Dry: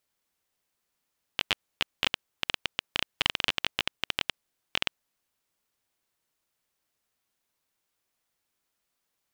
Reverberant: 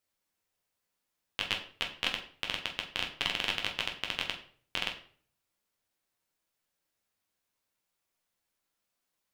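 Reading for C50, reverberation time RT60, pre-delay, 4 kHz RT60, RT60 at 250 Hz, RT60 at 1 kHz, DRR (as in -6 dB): 10.0 dB, 0.50 s, 10 ms, 0.40 s, 0.55 s, 0.45 s, 1.0 dB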